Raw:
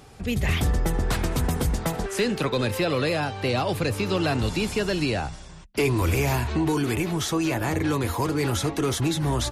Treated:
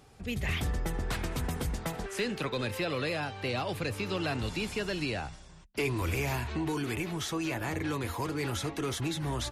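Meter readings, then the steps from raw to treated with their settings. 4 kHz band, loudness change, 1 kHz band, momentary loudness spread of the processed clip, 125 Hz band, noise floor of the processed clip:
−6.5 dB, −8.0 dB, −8.0 dB, 3 LU, −9.0 dB, −52 dBFS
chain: dynamic equaliser 2,300 Hz, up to +4 dB, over −41 dBFS, Q 0.79
level −9 dB

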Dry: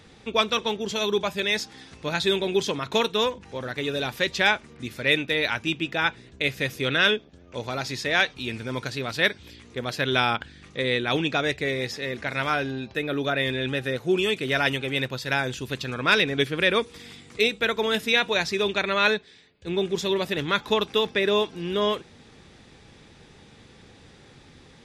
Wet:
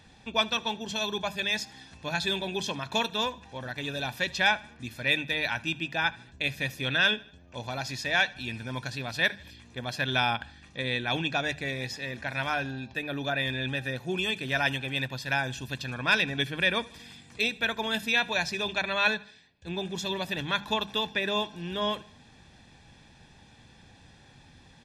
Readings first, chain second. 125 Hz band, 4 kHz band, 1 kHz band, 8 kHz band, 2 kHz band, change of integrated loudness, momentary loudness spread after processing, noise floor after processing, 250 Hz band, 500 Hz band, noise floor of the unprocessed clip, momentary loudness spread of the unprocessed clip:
−3.0 dB, −3.5 dB, −3.5 dB, −3.0 dB, −2.5 dB, −4.0 dB, 10 LU, −56 dBFS, −6.0 dB, −9.0 dB, −52 dBFS, 10 LU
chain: mains-hum notches 50/100/150/200 Hz
comb filter 1.2 ms, depth 56%
on a send: repeating echo 77 ms, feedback 49%, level −23 dB
on the sum: level −5 dB

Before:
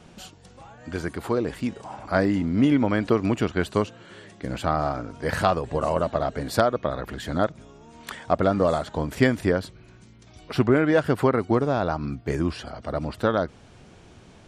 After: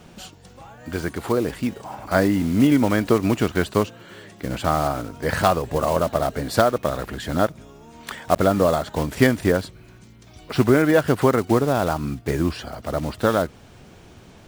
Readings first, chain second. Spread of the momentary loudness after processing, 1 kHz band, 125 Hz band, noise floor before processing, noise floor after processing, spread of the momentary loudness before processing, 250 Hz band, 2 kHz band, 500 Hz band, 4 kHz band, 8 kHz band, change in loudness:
12 LU, +3.0 dB, +3.0 dB, −51 dBFS, −48 dBFS, 12 LU, +3.0 dB, +3.0 dB, +3.0 dB, +4.0 dB, +8.0 dB, +3.0 dB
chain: one scale factor per block 5 bits
level +3 dB

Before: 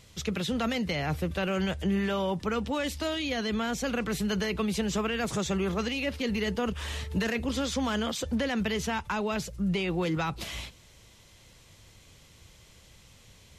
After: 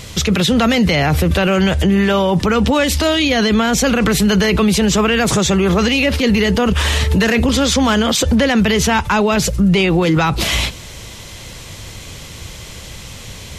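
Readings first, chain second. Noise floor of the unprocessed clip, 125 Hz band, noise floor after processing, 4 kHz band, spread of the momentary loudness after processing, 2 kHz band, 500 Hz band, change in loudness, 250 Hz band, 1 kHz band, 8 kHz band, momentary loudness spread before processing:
−56 dBFS, +17.0 dB, −34 dBFS, +16.5 dB, 19 LU, +15.5 dB, +15.0 dB, +16.0 dB, +15.5 dB, +15.0 dB, +18.5 dB, 3 LU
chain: boost into a limiter +28.5 dB
level −6 dB

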